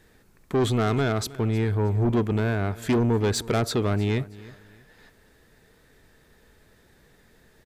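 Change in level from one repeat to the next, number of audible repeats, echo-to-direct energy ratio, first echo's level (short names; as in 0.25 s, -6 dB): -10.5 dB, 2, -19.0 dB, -19.5 dB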